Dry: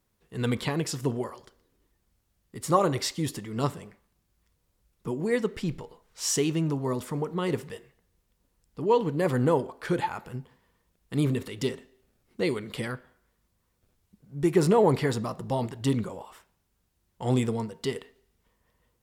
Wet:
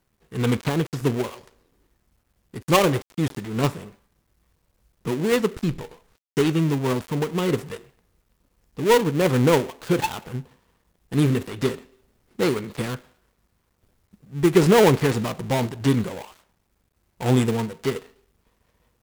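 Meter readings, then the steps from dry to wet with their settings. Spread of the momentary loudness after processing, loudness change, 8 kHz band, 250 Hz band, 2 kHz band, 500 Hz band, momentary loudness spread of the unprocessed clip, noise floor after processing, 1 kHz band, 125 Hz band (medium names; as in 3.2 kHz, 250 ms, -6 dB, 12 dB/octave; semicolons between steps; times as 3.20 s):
17 LU, +5.5 dB, +1.0 dB, +6.0 dB, +8.0 dB, +5.5 dB, 17 LU, -71 dBFS, +4.0 dB, +6.0 dB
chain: dead-time distortion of 0.24 ms; trim +6 dB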